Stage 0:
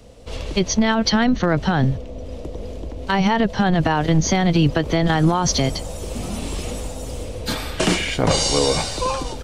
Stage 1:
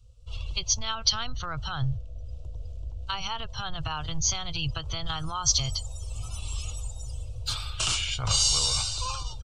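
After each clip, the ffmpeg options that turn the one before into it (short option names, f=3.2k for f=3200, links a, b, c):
-af "afftdn=nr=16:nf=-37,firequalizer=gain_entry='entry(120,0);entry(190,-28);entry(1300,0);entry(1800,-18);entry(2700,1);entry(7700,5);entry(11000,-2)':delay=0.05:min_phase=1,volume=-4dB"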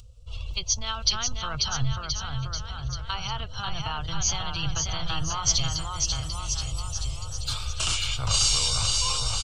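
-filter_complex "[0:a]acompressor=mode=upward:threshold=-42dB:ratio=2.5,asplit=2[a][b];[b]aecho=0:1:540|1026|1463|1857|2211:0.631|0.398|0.251|0.158|0.1[c];[a][c]amix=inputs=2:normalize=0"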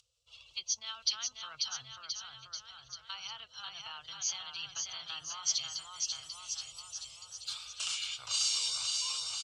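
-af "bandpass=f=4.5k:t=q:w=0.55:csg=0,volume=-7.5dB"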